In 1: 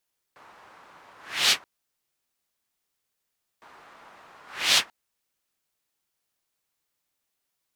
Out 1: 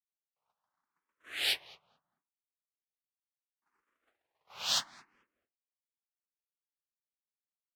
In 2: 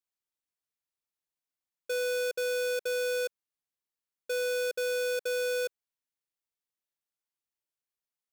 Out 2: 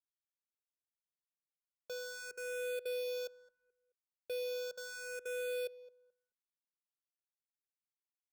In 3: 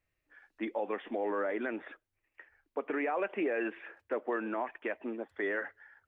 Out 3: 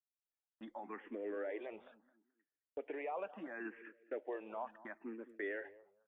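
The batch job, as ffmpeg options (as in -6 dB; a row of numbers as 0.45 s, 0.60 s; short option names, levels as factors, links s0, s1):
-filter_complex "[0:a]agate=range=0.0316:threshold=0.00447:ratio=16:detection=peak,asplit=2[s0][s1];[s1]adelay=216,lowpass=f=1100:p=1,volume=0.168,asplit=2[s2][s3];[s3]adelay=216,lowpass=f=1100:p=1,volume=0.28,asplit=2[s4][s5];[s5]adelay=216,lowpass=f=1100:p=1,volume=0.28[s6];[s0][s2][s4][s6]amix=inputs=4:normalize=0,asplit=2[s7][s8];[s8]afreqshift=0.73[s9];[s7][s9]amix=inputs=2:normalize=1,volume=0.447"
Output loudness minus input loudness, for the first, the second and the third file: -9.5 LU, -10.0 LU, -9.5 LU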